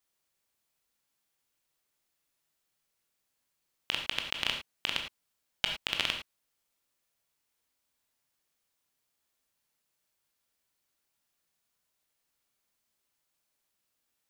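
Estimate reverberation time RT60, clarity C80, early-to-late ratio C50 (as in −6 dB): non-exponential decay, 10.0 dB, 6.5 dB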